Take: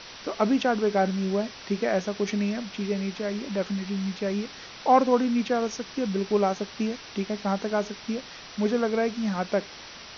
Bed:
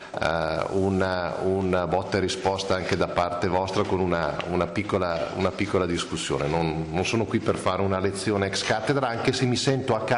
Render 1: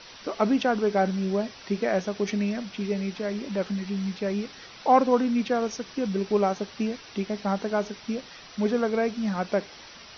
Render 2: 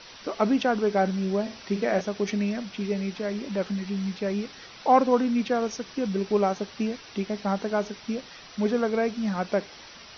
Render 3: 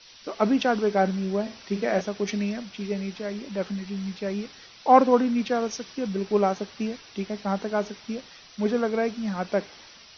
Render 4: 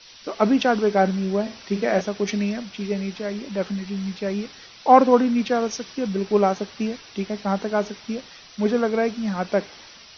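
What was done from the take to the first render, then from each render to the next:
denoiser 6 dB, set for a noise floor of -44 dBFS
1.41–2.01 flutter echo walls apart 8.6 m, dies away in 0.32 s
three-band expander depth 40%
gain +3.5 dB; limiter -1 dBFS, peak gain reduction 1.5 dB

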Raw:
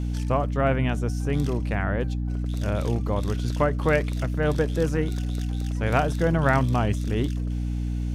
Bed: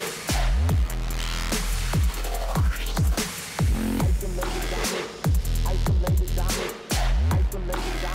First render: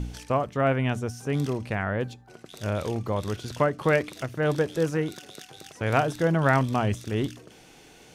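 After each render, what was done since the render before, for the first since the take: de-hum 60 Hz, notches 5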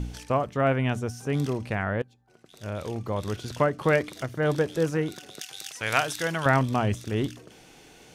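2.02–3.39 fade in, from -23.5 dB; 3.95–4.52 notch 2600 Hz; 5.41–6.46 tilt shelf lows -10 dB, about 1100 Hz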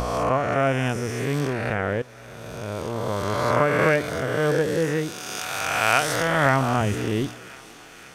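spectral swells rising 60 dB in 2.02 s; thinning echo 0.525 s, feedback 78%, high-pass 890 Hz, level -19.5 dB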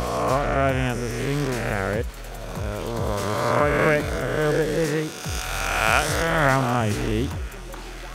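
add bed -9 dB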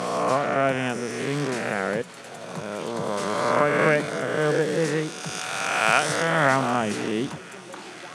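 elliptic band-pass 160–9900 Hz, stop band 40 dB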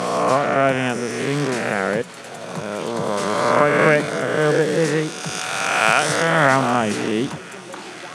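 gain +5 dB; limiter -1 dBFS, peak gain reduction 3 dB

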